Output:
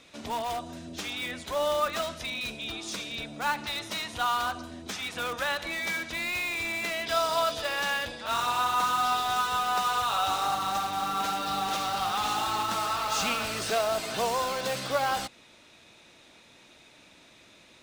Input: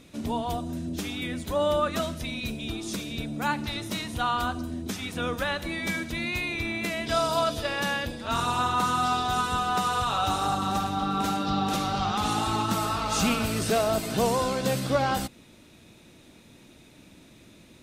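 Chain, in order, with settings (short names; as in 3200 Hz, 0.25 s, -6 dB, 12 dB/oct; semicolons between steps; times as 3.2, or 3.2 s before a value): three-band isolator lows -14 dB, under 520 Hz, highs -12 dB, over 7600 Hz; in parallel at -9 dB: wrapped overs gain 29 dB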